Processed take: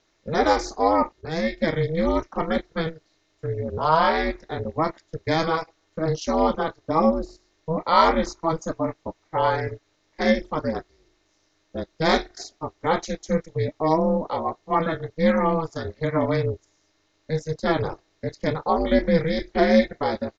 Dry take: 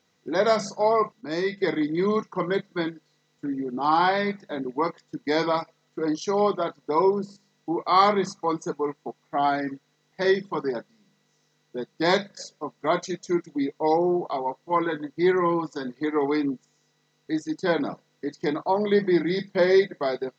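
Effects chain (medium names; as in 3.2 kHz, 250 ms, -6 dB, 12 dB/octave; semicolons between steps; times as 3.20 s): ring modulator 160 Hz; resampled via 16 kHz; trim +4.5 dB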